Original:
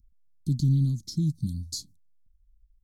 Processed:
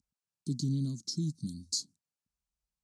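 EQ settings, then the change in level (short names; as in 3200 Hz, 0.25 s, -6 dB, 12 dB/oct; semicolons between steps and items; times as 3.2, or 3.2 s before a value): speaker cabinet 290–9100 Hz, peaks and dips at 330 Hz -3 dB, 2000 Hz -9 dB, 3400 Hz -7 dB; +3.0 dB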